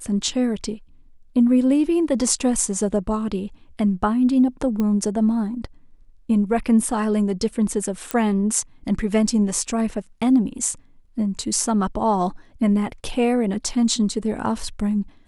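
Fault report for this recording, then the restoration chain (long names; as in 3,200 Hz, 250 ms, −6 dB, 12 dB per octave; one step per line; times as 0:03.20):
0:04.80: click −13 dBFS
0:08.11: click −8 dBFS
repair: click removal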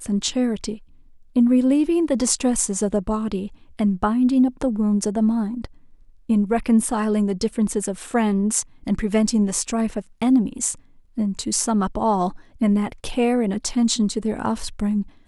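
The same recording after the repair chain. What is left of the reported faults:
none of them is left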